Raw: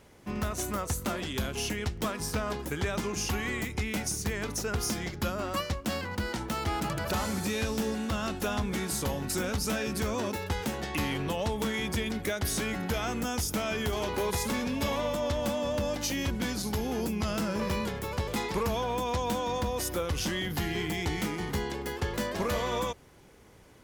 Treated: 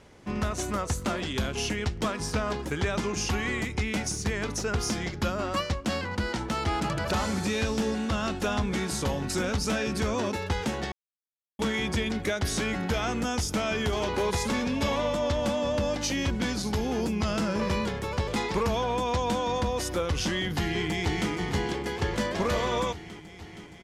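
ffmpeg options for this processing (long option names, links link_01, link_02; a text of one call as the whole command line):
ffmpeg -i in.wav -filter_complex "[0:a]asplit=2[link_01][link_02];[link_02]afade=type=in:start_time=20.56:duration=0.01,afade=type=out:start_time=21.31:duration=0.01,aecho=0:1:470|940|1410|1880|2350|2820|3290|3760|4230|4700|5170|5640:0.298538|0.238831|0.191064|0.152852|0.122281|0.097825|0.07826|0.062608|0.0500864|0.0400691|0.0320553|0.0256442[link_03];[link_01][link_03]amix=inputs=2:normalize=0,asplit=3[link_04][link_05][link_06];[link_04]atrim=end=10.92,asetpts=PTS-STARTPTS,afade=type=out:start_time=10.916:duration=0.004:curve=hsin[link_07];[link_05]atrim=start=10.92:end=11.59,asetpts=PTS-STARTPTS,volume=0[link_08];[link_06]atrim=start=11.59,asetpts=PTS-STARTPTS,afade=type=in:duration=0.004:curve=hsin[link_09];[link_07][link_08][link_09]concat=n=3:v=0:a=1,lowpass=7500,volume=3dB" out.wav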